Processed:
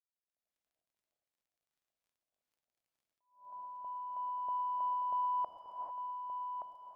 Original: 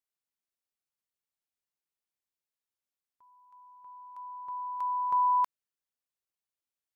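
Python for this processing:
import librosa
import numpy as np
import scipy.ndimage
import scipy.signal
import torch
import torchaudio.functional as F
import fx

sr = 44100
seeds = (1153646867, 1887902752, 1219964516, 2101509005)

y = fx.law_mismatch(x, sr, coded='mu')
y = fx.rider(y, sr, range_db=4, speed_s=0.5)
y = 10.0 ** (-27.5 / 20.0) * np.tanh(y / 10.0 ** (-27.5 / 20.0))
y = fx.lowpass_res(y, sr, hz=660.0, q=4.9)
y = fx.dmg_crackle(y, sr, seeds[0], per_s=22.0, level_db=-67.0)
y = y + 10.0 ** (-6.5 / 20.0) * np.pad(y, (int(1173 * sr / 1000.0), 0))[:len(y)]
y = fx.rev_gated(y, sr, seeds[1], gate_ms=470, shape='rising', drr_db=1.0)
y = fx.attack_slew(y, sr, db_per_s=140.0)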